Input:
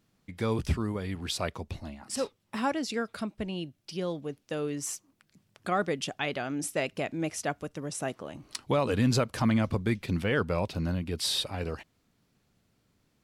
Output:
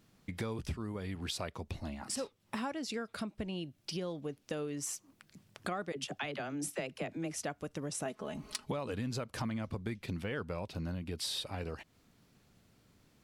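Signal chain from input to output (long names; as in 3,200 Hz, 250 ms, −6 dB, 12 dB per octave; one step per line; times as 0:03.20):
0:08.05–0:08.72: comb filter 4.7 ms, depth 78%
downward compressor 5 to 1, threshold −41 dBFS, peak gain reduction 18 dB
0:05.92–0:07.36: all-pass dispersion lows, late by 43 ms, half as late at 370 Hz
level +4.5 dB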